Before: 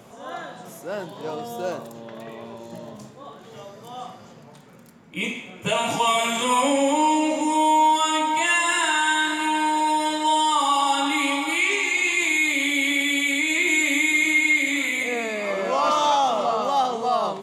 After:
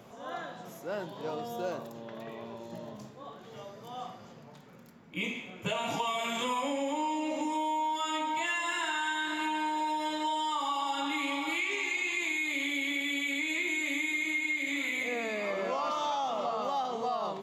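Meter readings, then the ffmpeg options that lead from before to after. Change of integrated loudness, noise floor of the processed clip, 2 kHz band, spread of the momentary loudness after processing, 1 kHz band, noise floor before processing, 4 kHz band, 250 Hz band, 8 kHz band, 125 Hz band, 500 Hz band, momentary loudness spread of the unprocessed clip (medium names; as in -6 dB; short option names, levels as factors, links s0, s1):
-11.0 dB, -51 dBFS, -10.5 dB, 14 LU, -11.0 dB, -46 dBFS, -10.5 dB, -10.0 dB, -15.0 dB, -6.5 dB, -9.5 dB, 19 LU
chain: -af "equalizer=f=9000:w=2.6:g=-13,acompressor=threshold=0.0631:ratio=6,volume=0.562"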